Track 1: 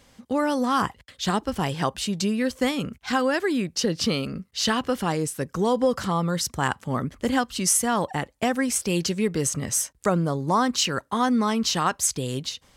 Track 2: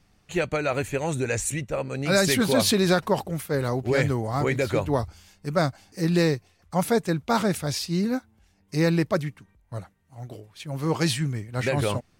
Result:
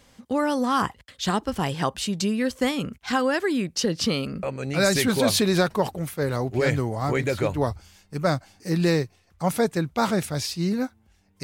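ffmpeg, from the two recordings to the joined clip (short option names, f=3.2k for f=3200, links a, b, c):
-filter_complex "[0:a]apad=whole_dur=11.43,atrim=end=11.43,atrim=end=4.432[a];[1:a]atrim=start=1.748:end=8.75[b];[a][b]acrossfade=d=0.004:c1=hsin:c2=hsin"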